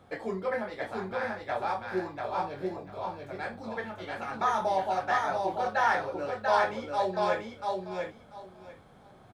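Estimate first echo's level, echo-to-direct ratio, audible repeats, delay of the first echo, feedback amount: -3.0 dB, -3.0 dB, 3, 690 ms, 19%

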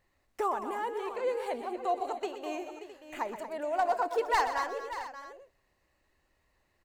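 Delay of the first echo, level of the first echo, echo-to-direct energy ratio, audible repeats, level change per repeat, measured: 125 ms, -11.0 dB, -6.0 dB, 4, no regular repeats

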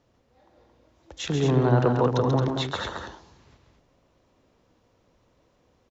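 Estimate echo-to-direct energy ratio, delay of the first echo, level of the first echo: -3.0 dB, 137 ms, -6.0 dB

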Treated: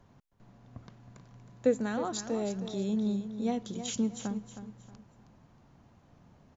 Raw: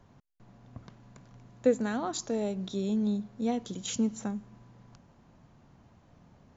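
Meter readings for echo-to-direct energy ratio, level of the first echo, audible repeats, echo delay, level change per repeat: -10.0 dB, -10.5 dB, 3, 316 ms, -10.0 dB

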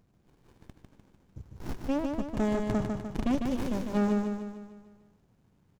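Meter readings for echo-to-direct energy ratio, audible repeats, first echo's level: -3.0 dB, 6, -4.5 dB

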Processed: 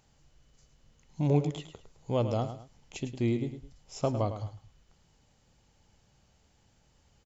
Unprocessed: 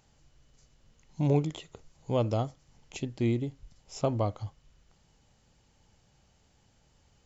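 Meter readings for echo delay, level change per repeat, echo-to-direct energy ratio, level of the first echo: 106 ms, -10.0 dB, -10.0 dB, -10.5 dB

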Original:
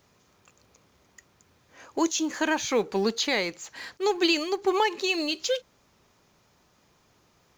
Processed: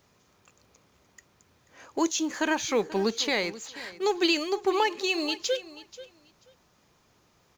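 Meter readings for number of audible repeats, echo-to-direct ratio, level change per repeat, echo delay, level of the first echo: 2, -17.0 dB, -15.0 dB, 485 ms, -17.0 dB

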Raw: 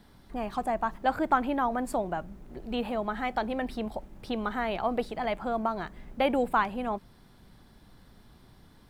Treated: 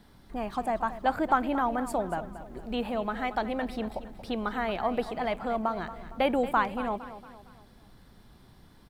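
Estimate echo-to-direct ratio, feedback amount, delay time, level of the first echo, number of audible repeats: -12.5 dB, 45%, 230 ms, -13.5 dB, 4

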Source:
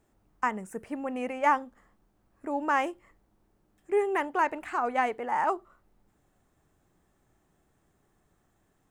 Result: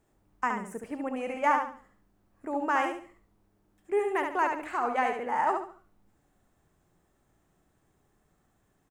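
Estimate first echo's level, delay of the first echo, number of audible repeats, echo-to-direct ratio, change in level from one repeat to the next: -5.0 dB, 70 ms, 3, -4.5 dB, -10.0 dB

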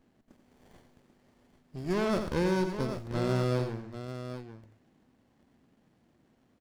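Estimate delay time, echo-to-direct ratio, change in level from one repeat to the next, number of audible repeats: 86 ms, -5.5 dB, no regular repeats, 3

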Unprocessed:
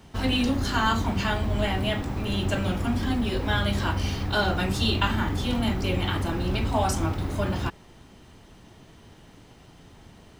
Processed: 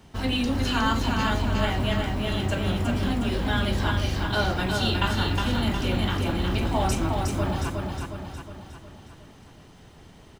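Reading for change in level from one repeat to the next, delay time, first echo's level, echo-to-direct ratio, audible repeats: -5.5 dB, 362 ms, -4.0 dB, -2.5 dB, 6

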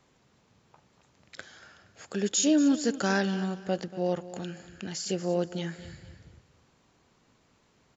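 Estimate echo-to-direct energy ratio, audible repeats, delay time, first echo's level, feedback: -15.0 dB, 2, 235 ms, -15.5 dB, 31%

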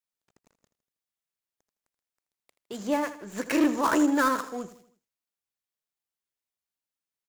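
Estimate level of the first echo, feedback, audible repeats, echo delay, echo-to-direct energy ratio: -13.5 dB, 45%, 4, 80 ms, -12.5 dB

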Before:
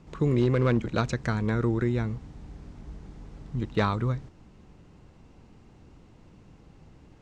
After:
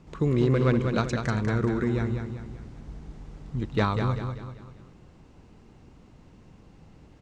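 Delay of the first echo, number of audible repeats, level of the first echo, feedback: 194 ms, 4, -6.5 dB, 43%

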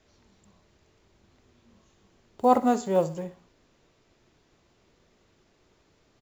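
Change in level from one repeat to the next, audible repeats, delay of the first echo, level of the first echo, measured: -8.0 dB, 2, 64 ms, -15.5 dB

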